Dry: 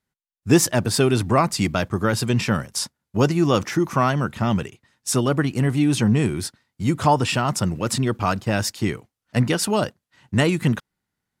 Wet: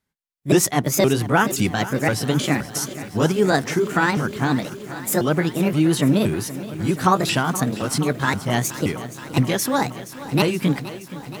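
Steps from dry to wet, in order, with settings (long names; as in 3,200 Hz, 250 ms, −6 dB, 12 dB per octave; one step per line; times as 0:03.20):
pitch shifter swept by a sawtooth +6.5 semitones, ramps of 521 ms
feedback echo at a low word length 473 ms, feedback 80%, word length 7 bits, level −15 dB
level +1.5 dB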